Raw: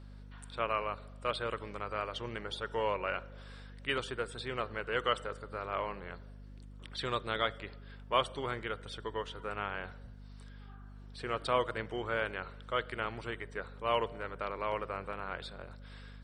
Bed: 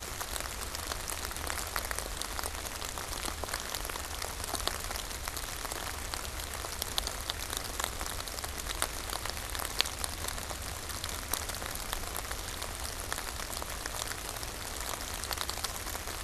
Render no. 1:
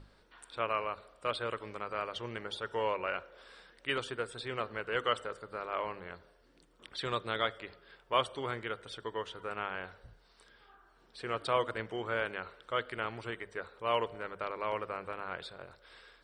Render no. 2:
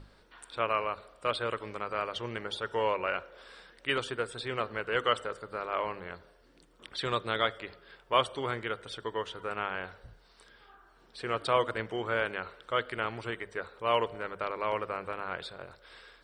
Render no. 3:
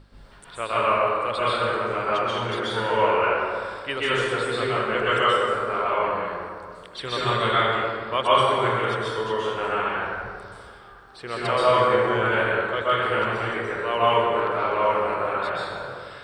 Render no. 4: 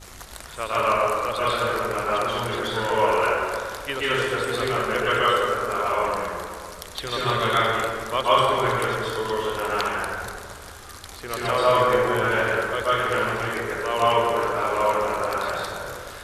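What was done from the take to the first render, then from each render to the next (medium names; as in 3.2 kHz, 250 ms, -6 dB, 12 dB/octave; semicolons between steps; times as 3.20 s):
hum notches 50/100/150/200/250 Hz
trim +3.5 dB
plate-style reverb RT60 2.1 s, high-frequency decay 0.5×, pre-delay 115 ms, DRR -9.5 dB
add bed -4 dB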